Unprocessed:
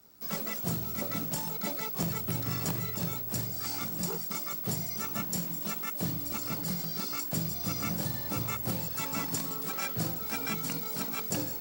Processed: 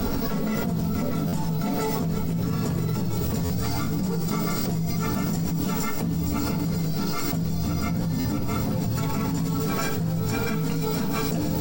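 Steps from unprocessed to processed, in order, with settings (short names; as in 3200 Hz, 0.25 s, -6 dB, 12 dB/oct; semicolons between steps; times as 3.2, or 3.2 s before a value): tilt -3 dB/oct; notches 60/120/180 Hz; chorus voices 6, 0.48 Hz, delay 16 ms, depth 4.8 ms; hard clip -21 dBFS, distortion -27 dB; thin delay 0.471 s, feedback 67%, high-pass 4300 Hz, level -3 dB; shoebox room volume 2900 m³, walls furnished, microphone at 1.7 m; stuck buffer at 1.27/3.44/8.19, samples 512, times 4; fast leveller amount 100%; gain -2 dB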